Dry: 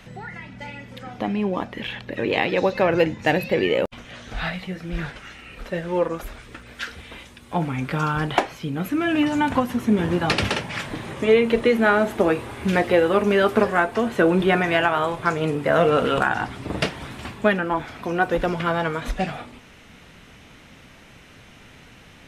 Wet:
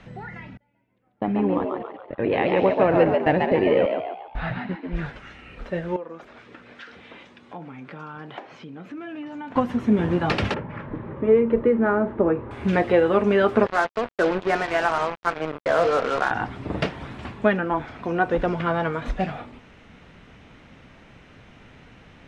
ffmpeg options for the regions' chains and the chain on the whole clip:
-filter_complex "[0:a]asettb=1/sr,asplit=3[a][b][c];[a]atrim=end=0.574[d];[b]atrim=start=0.57:end=4.96,asetpts=PTS-STARTPTS,afade=t=in:d=0.004:c=qsin,afade=t=out:st=4.386:d=0.004:c=qsin,aemphasis=mode=reproduction:type=75fm,agate=range=-33dB:threshold=-30dB:ratio=16:release=100:detection=peak,asplit=7[e][f][g][h][i][j][k];[f]adelay=139,afreqshift=83,volume=-4dB[l];[g]adelay=278,afreqshift=166,volume=-11.1dB[m];[h]adelay=417,afreqshift=249,volume=-18.3dB[n];[i]adelay=556,afreqshift=332,volume=-25.4dB[o];[j]adelay=695,afreqshift=415,volume=-32.5dB[p];[k]adelay=834,afreqshift=498,volume=-39.7dB[q];[e][l][m][n][o][p][q]amix=inputs=7:normalize=0,atrim=end_sample=193599[r];[c]atrim=start=4.956[s];[d][r]acrossfade=d=0.004:c1=hsin:c2=qsin[t];[t][s]acrossfade=d=0.004:c1=qsin:c2=hsin,asettb=1/sr,asplit=3[u][v][w];[u]atrim=end=5.964[x];[v]atrim=start=5.96:end=9.56,asetpts=PTS-STARTPTS,afade=t=in:d=0.004:c=qsin,afade=t=out:st=3.596:d=0.004:c=qsin,acompressor=threshold=-36dB:ratio=3:attack=3.2:release=140:knee=1:detection=peak,highpass=190,lowpass=6.5k[y];[w]atrim=start=9.556[z];[x][y]acrossfade=d=0.004:c1=hsin:c2=qsin[aa];[aa][z]acrossfade=d=0.004:c1=qsin:c2=hsin,asettb=1/sr,asplit=3[ab][ac][ad];[ab]atrim=end=10.544[ae];[ac]atrim=start=10.54:end=12.51,asetpts=PTS-STARTPTS,afade=t=in:d=0.004:c=qsin,afade=t=out:st=1.966:d=0.004:c=qsin,lowpass=1.2k,equalizer=f=720:w=7.7:g=-13[af];[ad]atrim=start=12.506[ag];[ae][af]acrossfade=d=0.004:c1=hsin:c2=qsin[ah];[ah][ag]acrossfade=d=0.004:c1=qsin:c2=hsin,asettb=1/sr,asplit=3[ai][aj][ak];[ai]atrim=end=13.664[al];[aj]atrim=start=13.66:end=16.31,asetpts=PTS-STARTPTS,afade=t=in:d=0.004:c=qsin,afade=t=out:st=2.646:d=0.004:c=qsin,acrossover=split=380 2600:gain=0.2 1 0.2[am][an][ao];[am][an][ao]amix=inputs=3:normalize=0,acrusher=bits=3:mix=0:aa=0.5[ap];[ak]atrim=start=16.306[aq];[al][ap]acrossfade=d=0.004:c1=hsin:c2=qsin[ar];[ar][aq]acrossfade=d=0.004:c1=qsin:c2=hsin,lowpass=7.5k,highshelf=f=3.2k:g=-11.5"

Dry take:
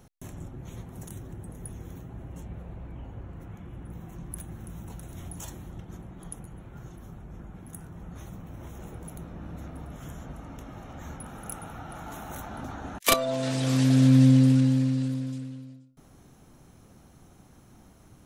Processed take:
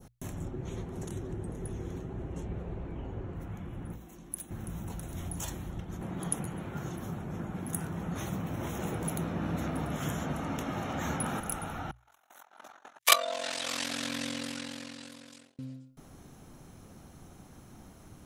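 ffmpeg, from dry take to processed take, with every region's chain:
-filter_complex "[0:a]asettb=1/sr,asplit=3[a][b][c];[a]atrim=end=0.454[d];[b]atrim=start=0.45:end=3.35,asetpts=PTS-STARTPTS,afade=t=in:d=0.004:c=qsin,afade=t=out:st=2.896:d=0.004:c=qsin,lowpass=7.9k,equalizer=f=390:t=o:w=0.5:g=7.5[e];[c]atrim=start=3.346[f];[d][e]acrossfade=d=0.004:c1=hsin:c2=qsin[g];[g][f]acrossfade=d=0.004:c1=qsin:c2=hsin,asettb=1/sr,asplit=3[h][i][j];[h]atrim=end=3.954[k];[i]atrim=start=3.95:end=4.51,asetpts=PTS-STARTPTS,afade=t=in:d=0.004:c=qsin,afade=t=out:st=0.556:d=0.004:c=qsin,lowshelf=f=170:t=q:w=1.5:g=-13.5,acrossover=split=130|3000[l][m][n];[m]acompressor=threshold=-53dB:ratio=6:attack=3.2:release=140:knee=2.83:detection=peak[o];[l][o][n]amix=inputs=3:normalize=0[p];[j]atrim=start=4.506[q];[k][p]acrossfade=d=0.004:c1=hsin:c2=qsin[r];[r][q]acrossfade=d=0.004:c1=qsin:c2=hsin,asettb=1/sr,asplit=3[s][t][u];[s]atrim=end=6.014[v];[t]atrim=start=6.01:end=11.4,asetpts=PTS-STARTPTS,afade=t=in:d=0.004:c=qsin,afade=t=out:st=5.386:d=0.004:c=qsin,highpass=110,acontrast=68[w];[u]atrim=start=11.396[x];[v][w]acrossfade=d=0.004:c1=hsin:c2=qsin[y];[y][x]acrossfade=d=0.004:c1=qsin:c2=hsin,asettb=1/sr,asplit=3[z][aa][ab];[z]atrim=end=11.914[ac];[aa]atrim=start=11.91:end=15.59,asetpts=PTS-STARTPTS,afade=t=in:d=0.004:c=qsin,afade=t=out:st=3.676:d=0.004:c=qsin,agate=range=-28dB:threshold=-37dB:ratio=16:release=100:detection=peak,highpass=800,aeval=exprs='val(0)*sin(2*PI*22*n/s)':c=same[ad];[ab]atrim=start=15.586[ae];[ac][ad]acrossfade=d=0.004:c1=hsin:c2=qsin[af];[af][ae]acrossfade=d=0.004:c1=qsin:c2=hsin,bandreject=f=60:t=h:w=6,bandreject=f=120:t=h:w=6,adynamicequalizer=threshold=0.00355:dfrequency=2600:dqfactor=0.7:tfrequency=2600:tqfactor=0.7:attack=5:release=100:ratio=0.375:range=1.5:mode=boostabove:tftype=bell,volume=2.5dB"

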